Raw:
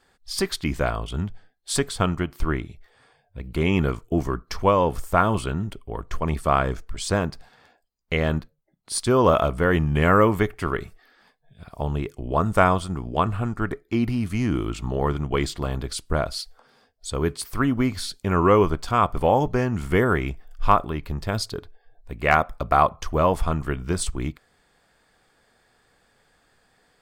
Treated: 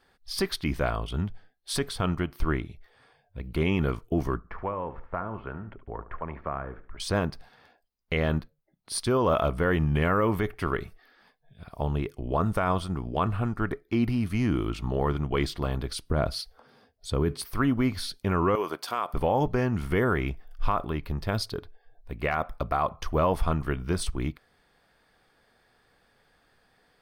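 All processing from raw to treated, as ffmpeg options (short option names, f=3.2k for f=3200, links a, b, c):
-filter_complex "[0:a]asettb=1/sr,asplit=3[a][b][c];[a]atrim=end=4.374[d];[b]atrim=start=4.37:end=7,asetpts=PTS-STARTPTS,afade=t=in:d=0.004:c=qsin,afade=t=out:st=2.626:d=0.004:c=qsin,lowpass=f=1.9k:w=0.5412,lowpass=f=1.9k:w=1.3066,acrossover=split=480|1500[e][f][g];[e]acompressor=threshold=-36dB:ratio=4[h];[f]acompressor=threshold=-33dB:ratio=4[i];[g]acompressor=threshold=-41dB:ratio=4[j];[h][i][j]amix=inputs=3:normalize=0,aecho=1:1:72|144|216:0.2|0.0658|0.0217,atrim=end_sample=115983[k];[c]atrim=start=6.996[l];[d][k]acrossfade=d=0.004:c1=hsin:c2=qsin[m];[m][l]acrossfade=d=0.004:c1=qsin:c2=hsin,asettb=1/sr,asplit=3[n][o][p];[n]atrim=end=16.064[q];[o]atrim=start=16.06:end=17.42,asetpts=PTS-STARTPTS,afade=t=in:d=0.004:c=qsin,afade=t=out:st=1.356:d=0.004:c=qsin,highpass=f=57:p=1,lowshelf=f=470:g=8[r];[p]atrim=start=17.416[s];[q][r]acrossfade=d=0.004:c1=hsin:c2=qsin[t];[t][s]acrossfade=d=0.004:c1=qsin:c2=hsin,asettb=1/sr,asplit=3[u][v][w];[u]atrim=end=18.554[x];[v]atrim=start=18.55:end=19.14,asetpts=PTS-STARTPTS,afade=t=in:d=0.004:c=qsin,afade=t=out:st=0.586:d=0.004:c=qsin,highpass=390,highshelf=f=6.2k:g=9.5,acompressor=threshold=-21dB:ratio=5:attack=3.2:release=140:knee=1:detection=peak[y];[w]atrim=start=19.136[z];[x][y]acrossfade=d=0.004:c1=hsin:c2=qsin[aa];[aa][z]acrossfade=d=0.004:c1=qsin:c2=hsin,alimiter=limit=-12.5dB:level=0:latency=1:release=54,equalizer=f=7.4k:t=o:w=0.33:g=-12.5,volume=-2dB"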